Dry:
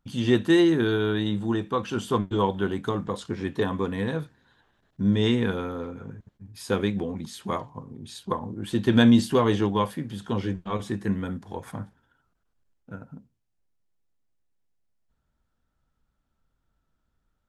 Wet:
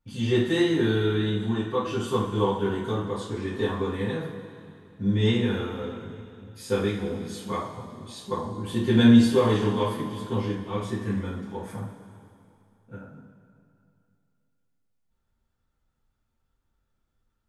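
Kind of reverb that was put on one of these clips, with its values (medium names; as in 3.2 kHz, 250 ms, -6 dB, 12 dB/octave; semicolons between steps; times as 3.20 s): two-slope reverb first 0.38 s, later 2.6 s, from -15 dB, DRR -9 dB; trim -10 dB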